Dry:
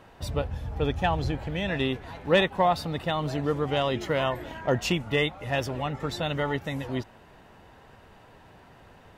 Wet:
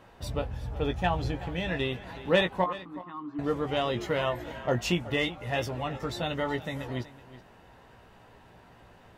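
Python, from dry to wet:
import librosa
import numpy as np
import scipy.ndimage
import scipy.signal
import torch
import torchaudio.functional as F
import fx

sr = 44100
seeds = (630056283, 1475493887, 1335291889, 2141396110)

y = fx.double_bandpass(x, sr, hz=570.0, octaves=1.9, at=(2.64, 3.39))
y = fx.doubler(y, sr, ms=17.0, db=-7.0)
y = y + 10.0 ** (-16.5 / 20.0) * np.pad(y, (int(373 * sr / 1000.0), 0))[:len(y)]
y = y * librosa.db_to_amplitude(-3.0)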